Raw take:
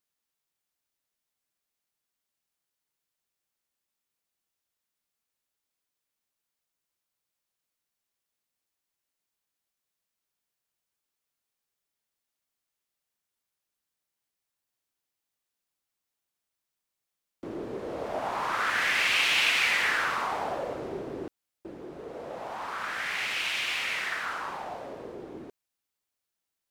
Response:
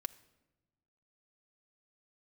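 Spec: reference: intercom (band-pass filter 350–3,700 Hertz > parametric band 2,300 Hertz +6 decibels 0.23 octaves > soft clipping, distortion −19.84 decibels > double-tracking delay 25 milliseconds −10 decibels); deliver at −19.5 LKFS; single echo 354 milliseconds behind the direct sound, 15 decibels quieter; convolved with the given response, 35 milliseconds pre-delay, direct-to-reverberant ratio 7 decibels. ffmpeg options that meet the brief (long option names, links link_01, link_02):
-filter_complex "[0:a]aecho=1:1:354:0.178,asplit=2[link_01][link_02];[1:a]atrim=start_sample=2205,adelay=35[link_03];[link_02][link_03]afir=irnorm=-1:irlink=0,volume=-5.5dB[link_04];[link_01][link_04]amix=inputs=2:normalize=0,highpass=350,lowpass=3700,equalizer=frequency=2300:width_type=o:width=0.23:gain=6,asoftclip=threshold=-15.5dB,asplit=2[link_05][link_06];[link_06]adelay=25,volume=-10dB[link_07];[link_05][link_07]amix=inputs=2:normalize=0,volume=6.5dB"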